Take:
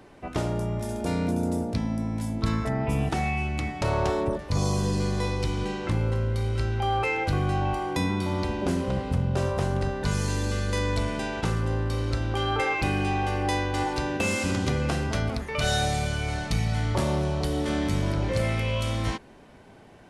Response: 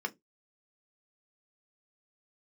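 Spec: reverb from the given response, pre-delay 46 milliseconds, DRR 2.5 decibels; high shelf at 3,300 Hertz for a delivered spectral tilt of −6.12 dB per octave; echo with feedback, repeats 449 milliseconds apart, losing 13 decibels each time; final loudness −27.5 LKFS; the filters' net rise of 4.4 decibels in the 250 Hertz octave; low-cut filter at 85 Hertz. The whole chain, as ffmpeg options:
-filter_complex "[0:a]highpass=85,equalizer=frequency=250:width_type=o:gain=6,highshelf=frequency=3300:gain=-5.5,aecho=1:1:449|898|1347:0.224|0.0493|0.0108,asplit=2[link_01][link_02];[1:a]atrim=start_sample=2205,adelay=46[link_03];[link_02][link_03]afir=irnorm=-1:irlink=0,volume=-6dB[link_04];[link_01][link_04]amix=inputs=2:normalize=0,volume=-2dB"

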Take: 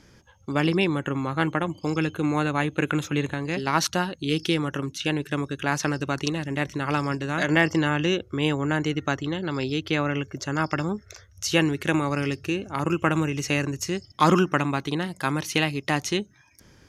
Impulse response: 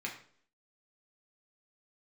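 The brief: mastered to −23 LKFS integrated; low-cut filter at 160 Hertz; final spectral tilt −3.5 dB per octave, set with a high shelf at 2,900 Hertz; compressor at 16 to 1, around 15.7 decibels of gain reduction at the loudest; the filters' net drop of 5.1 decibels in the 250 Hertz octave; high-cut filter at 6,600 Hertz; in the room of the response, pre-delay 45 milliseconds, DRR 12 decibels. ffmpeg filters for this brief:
-filter_complex "[0:a]highpass=160,lowpass=6600,equalizer=frequency=250:width_type=o:gain=-6.5,highshelf=frequency=2900:gain=6,acompressor=threshold=-29dB:ratio=16,asplit=2[link_01][link_02];[1:a]atrim=start_sample=2205,adelay=45[link_03];[link_02][link_03]afir=irnorm=-1:irlink=0,volume=-14.5dB[link_04];[link_01][link_04]amix=inputs=2:normalize=0,volume=11.5dB"

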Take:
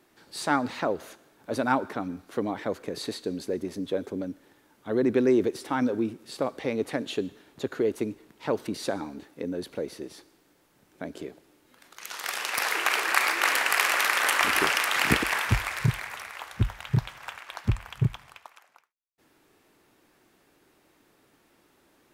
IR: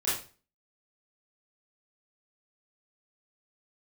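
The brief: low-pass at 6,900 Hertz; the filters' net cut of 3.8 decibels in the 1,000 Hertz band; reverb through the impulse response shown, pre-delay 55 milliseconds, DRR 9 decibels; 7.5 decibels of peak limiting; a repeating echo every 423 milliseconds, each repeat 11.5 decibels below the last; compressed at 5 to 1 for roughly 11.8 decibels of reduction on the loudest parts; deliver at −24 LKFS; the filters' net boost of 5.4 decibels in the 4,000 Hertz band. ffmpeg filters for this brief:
-filter_complex "[0:a]lowpass=6900,equalizer=frequency=1000:width_type=o:gain=-5.5,equalizer=frequency=4000:width_type=o:gain=8,acompressor=threshold=-32dB:ratio=5,alimiter=limit=-23dB:level=0:latency=1,aecho=1:1:423|846|1269:0.266|0.0718|0.0194,asplit=2[link_01][link_02];[1:a]atrim=start_sample=2205,adelay=55[link_03];[link_02][link_03]afir=irnorm=-1:irlink=0,volume=-17.5dB[link_04];[link_01][link_04]amix=inputs=2:normalize=0,volume=12dB"

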